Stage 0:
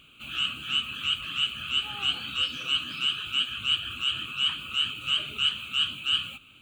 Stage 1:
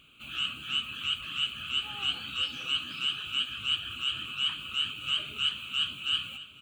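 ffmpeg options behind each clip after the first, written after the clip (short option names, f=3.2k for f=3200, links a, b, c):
-af "aecho=1:1:598|1196|1794|2392|2990:0.158|0.0888|0.0497|0.0278|0.0156,volume=-3.5dB"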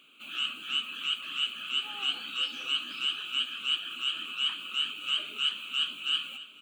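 -af "highpass=f=230:w=0.5412,highpass=f=230:w=1.3066"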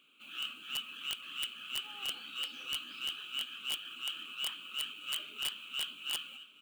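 -af "bandreject=f=660:w=12,aeval=exprs='(mod(9.44*val(0)+1,2)-1)/9.44':c=same,acrusher=bits=5:mode=log:mix=0:aa=0.000001,volume=-7.5dB"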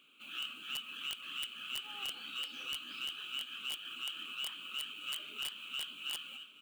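-af "acompressor=threshold=-38dB:ratio=6,volume=1.5dB"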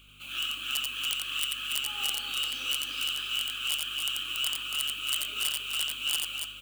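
-filter_complex "[0:a]bass=f=250:g=-9,treble=f=4k:g=8,aeval=exprs='val(0)+0.000631*(sin(2*PI*50*n/s)+sin(2*PI*2*50*n/s)/2+sin(2*PI*3*50*n/s)/3+sin(2*PI*4*50*n/s)/4+sin(2*PI*5*50*n/s)/5)':c=same,asplit=2[a][b];[b]aecho=0:1:87.46|282.8:0.708|0.501[c];[a][c]amix=inputs=2:normalize=0,volume=5.5dB"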